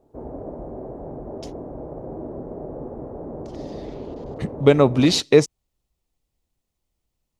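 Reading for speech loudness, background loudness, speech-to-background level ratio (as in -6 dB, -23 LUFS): -17.0 LUFS, -35.0 LUFS, 18.0 dB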